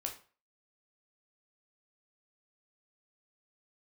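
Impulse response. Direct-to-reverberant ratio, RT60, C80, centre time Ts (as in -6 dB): 1.5 dB, 0.40 s, 15.0 dB, 16 ms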